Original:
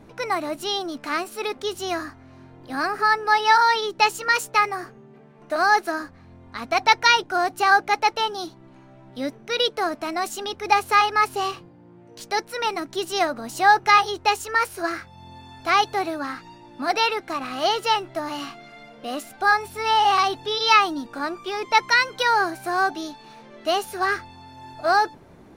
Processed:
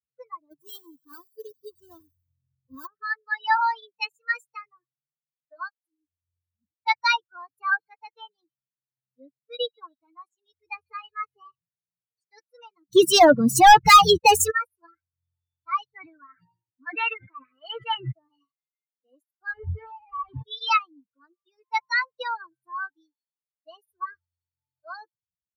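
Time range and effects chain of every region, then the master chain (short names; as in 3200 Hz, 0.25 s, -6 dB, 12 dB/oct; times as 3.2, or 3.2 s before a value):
0.51–2.87 half-waves squared off + bell 2300 Hz -11 dB 0.39 oct + thin delay 92 ms, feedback 74%, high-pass 4200 Hz, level -7.5 dB
5.69–6.85 compressor, threshold -26 dBFS + brick-wall FIR band-stop 340–6000 Hz
7.59–11.48 high shelf 6400 Hz -8 dB + thin delay 0.142 s, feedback 59%, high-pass 3700 Hz, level -11 dB
12.88–14.51 bell 170 Hz +10.5 dB 0.3 oct + sample leveller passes 5
15.96–18.12 LPF 3900 Hz + bell 1900 Hz +9 dB 1 oct + sustainer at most 42 dB/s
19.53–20.43 infinite clipping + LPF 2200 Hz
whole clip: per-bin expansion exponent 3; bell 82 Hz +6 dB 1.6 oct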